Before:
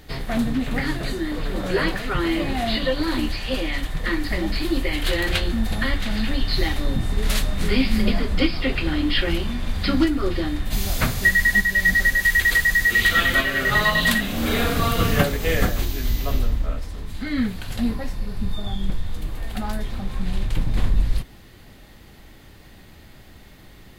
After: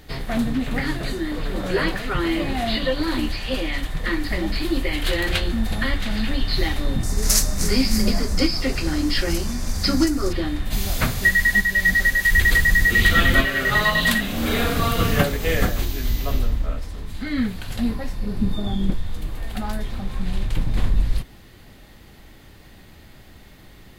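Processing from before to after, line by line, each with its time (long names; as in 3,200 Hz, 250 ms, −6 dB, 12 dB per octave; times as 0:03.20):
0:07.03–0:10.33: high shelf with overshoot 4,400 Hz +9.5 dB, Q 3
0:12.31–0:13.45: low-shelf EQ 360 Hz +9.5 dB
0:18.23–0:18.94: parametric band 270 Hz +9.5 dB 1.8 octaves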